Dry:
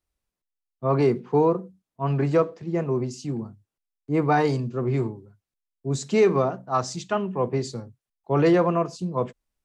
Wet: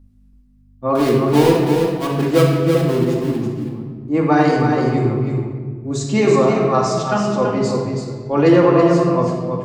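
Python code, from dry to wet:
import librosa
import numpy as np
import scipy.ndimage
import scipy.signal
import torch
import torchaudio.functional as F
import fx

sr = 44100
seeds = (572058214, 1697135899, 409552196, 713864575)

y = fx.dead_time(x, sr, dead_ms=0.18, at=(0.95, 3.36))
y = fx.add_hum(y, sr, base_hz=50, snr_db=28)
y = y + 10.0 ** (-6.0 / 20.0) * np.pad(y, (int(329 * sr / 1000.0), 0))[:len(y)]
y = fx.room_shoebox(y, sr, seeds[0], volume_m3=1700.0, walls='mixed', distance_m=2.3)
y = F.gain(torch.from_numpy(y), 3.0).numpy()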